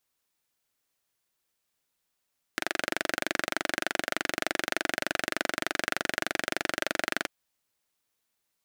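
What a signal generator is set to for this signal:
pulse-train model of a single-cylinder engine, steady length 4.69 s, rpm 2,800, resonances 340/620/1,500 Hz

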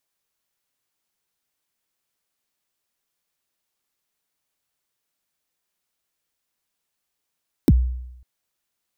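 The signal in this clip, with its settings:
synth kick length 0.55 s, from 370 Hz, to 62 Hz, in 40 ms, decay 0.86 s, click on, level −8 dB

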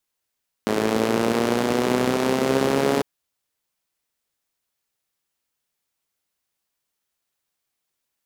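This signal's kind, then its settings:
pulse-train model of a four-cylinder engine, changing speed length 2.35 s, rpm 3,200, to 4,200, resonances 250/400 Hz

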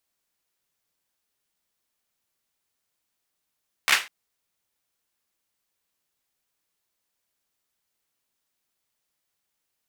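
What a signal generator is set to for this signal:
synth clap length 0.20 s, apart 14 ms, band 2,000 Hz, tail 0.27 s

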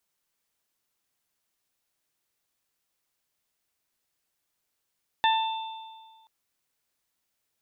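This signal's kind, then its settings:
harmonic partials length 1.03 s, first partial 890 Hz, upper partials −6/−12/−7 dB, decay 1.62 s, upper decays 0.40/1.22/1.56 s, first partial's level −19 dB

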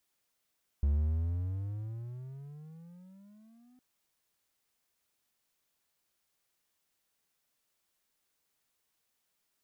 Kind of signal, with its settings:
pitch glide with a swell triangle, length 2.96 s, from 69.6 Hz, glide +22.5 semitones, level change −35.5 dB, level −22 dB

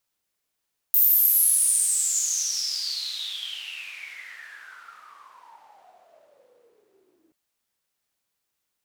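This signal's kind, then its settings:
filter sweep on noise white, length 6.38 s bandpass, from 15,000 Hz, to 310 Hz, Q 12, exponential, gain ramp −36.5 dB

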